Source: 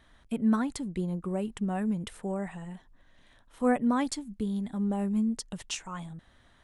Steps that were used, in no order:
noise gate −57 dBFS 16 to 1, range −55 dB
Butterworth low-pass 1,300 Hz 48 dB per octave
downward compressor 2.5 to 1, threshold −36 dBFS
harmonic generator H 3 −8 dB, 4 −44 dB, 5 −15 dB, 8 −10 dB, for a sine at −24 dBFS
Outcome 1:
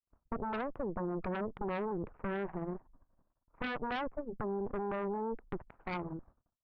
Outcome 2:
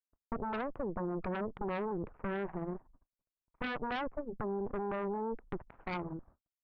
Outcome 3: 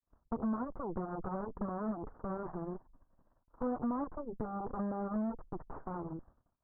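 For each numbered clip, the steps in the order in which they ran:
downward compressor, then Butterworth low-pass, then noise gate, then harmonic generator
Butterworth low-pass, then downward compressor, then harmonic generator, then noise gate
noise gate, then harmonic generator, then Butterworth low-pass, then downward compressor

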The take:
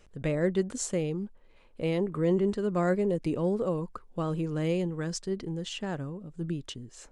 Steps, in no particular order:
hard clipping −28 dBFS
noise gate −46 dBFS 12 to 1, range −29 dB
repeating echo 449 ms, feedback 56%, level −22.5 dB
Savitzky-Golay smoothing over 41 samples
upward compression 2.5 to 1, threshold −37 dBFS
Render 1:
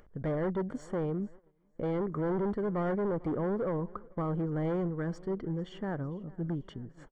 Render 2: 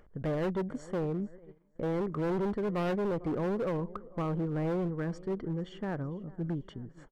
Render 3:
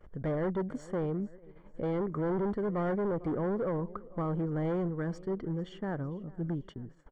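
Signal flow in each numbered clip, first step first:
hard clipping, then repeating echo, then noise gate, then Savitzky-Golay smoothing, then upward compression
repeating echo, then noise gate, then upward compression, then Savitzky-Golay smoothing, then hard clipping
upward compression, then repeating echo, then hard clipping, then Savitzky-Golay smoothing, then noise gate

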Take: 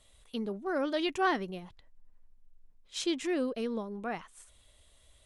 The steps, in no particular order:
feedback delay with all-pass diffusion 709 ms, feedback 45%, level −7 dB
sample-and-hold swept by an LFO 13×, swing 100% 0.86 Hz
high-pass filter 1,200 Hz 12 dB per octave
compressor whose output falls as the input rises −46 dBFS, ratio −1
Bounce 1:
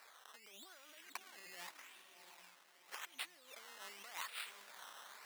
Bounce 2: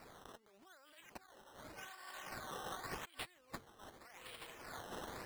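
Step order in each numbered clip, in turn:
compressor whose output falls as the input rises, then feedback delay with all-pass diffusion, then sample-and-hold swept by an LFO, then high-pass filter
feedback delay with all-pass diffusion, then compressor whose output falls as the input rises, then high-pass filter, then sample-and-hold swept by an LFO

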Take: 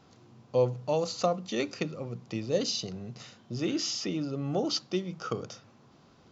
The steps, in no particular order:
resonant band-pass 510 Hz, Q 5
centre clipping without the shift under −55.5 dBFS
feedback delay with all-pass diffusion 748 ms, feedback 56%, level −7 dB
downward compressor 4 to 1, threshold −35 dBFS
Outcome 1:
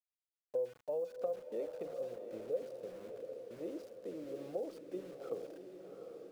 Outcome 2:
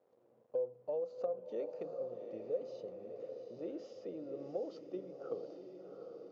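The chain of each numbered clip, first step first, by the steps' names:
resonant band-pass, then downward compressor, then centre clipping without the shift, then feedback delay with all-pass diffusion
centre clipping without the shift, then resonant band-pass, then downward compressor, then feedback delay with all-pass diffusion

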